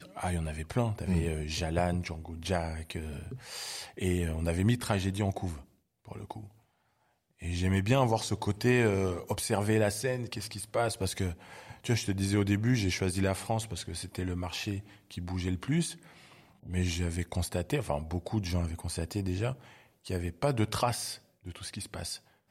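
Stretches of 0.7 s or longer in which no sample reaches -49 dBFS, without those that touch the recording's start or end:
6.48–7.41 s

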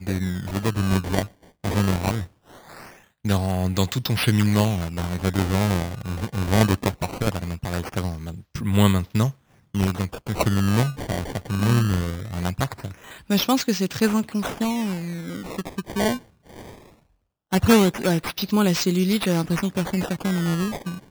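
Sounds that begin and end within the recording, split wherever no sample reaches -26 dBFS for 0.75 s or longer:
3.25–16.16 s

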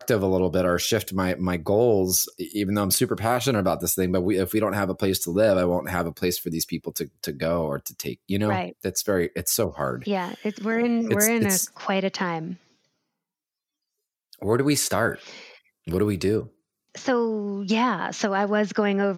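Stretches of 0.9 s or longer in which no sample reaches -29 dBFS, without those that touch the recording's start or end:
12.53–14.33 s

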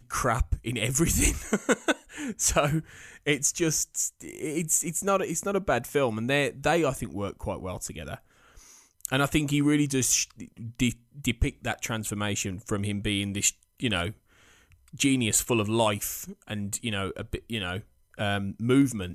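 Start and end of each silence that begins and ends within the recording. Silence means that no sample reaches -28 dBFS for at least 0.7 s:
8.14–9.05 s
14.09–15.00 s

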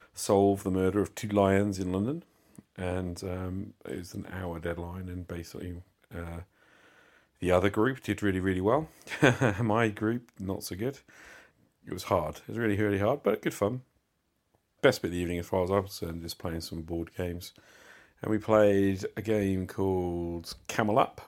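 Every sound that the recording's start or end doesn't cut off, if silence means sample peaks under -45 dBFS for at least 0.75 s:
7.42–13.80 s

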